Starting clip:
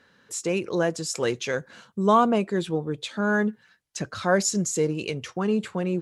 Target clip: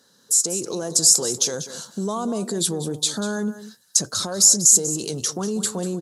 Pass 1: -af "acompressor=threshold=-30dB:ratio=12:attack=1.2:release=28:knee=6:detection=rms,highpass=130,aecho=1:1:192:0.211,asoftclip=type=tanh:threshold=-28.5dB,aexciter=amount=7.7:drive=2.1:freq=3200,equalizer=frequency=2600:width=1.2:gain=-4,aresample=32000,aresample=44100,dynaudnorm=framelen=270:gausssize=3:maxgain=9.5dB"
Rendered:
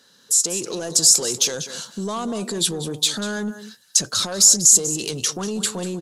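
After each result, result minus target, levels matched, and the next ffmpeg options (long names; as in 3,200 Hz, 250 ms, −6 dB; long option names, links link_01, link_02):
soft clipping: distortion +17 dB; 2,000 Hz band +3.0 dB
-af "acompressor=threshold=-30dB:ratio=12:attack=1.2:release=28:knee=6:detection=rms,highpass=130,aecho=1:1:192:0.211,asoftclip=type=tanh:threshold=-18.5dB,aexciter=amount=7.7:drive=2.1:freq=3200,equalizer=frequency=2600:width=1.2:gain=-4,aresample=32000,aresample=44100,dynaudnorm=framelen=270:gausssize=3:maxgain=9.5dB"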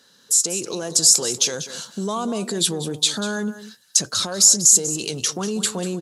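2,000 Hz band +4.0 dB
-af "acompressor=threshold=-30dB:ratio=12:attack=1.2:release=28:knee=6:detection=rms,highpass=130,aecho=1:1:192:0.211,asoftclip=type=tanh:threshold=-18.5dB,aexciter=amount=7.7:drive=2.1:freq=3200,equalizer=frequency=2600:width=1.2:gain=-15.5,aresample=32000,aresample=44100,dynaudnorm=framelen=270:gausssize=3:maxgain=9.5dB"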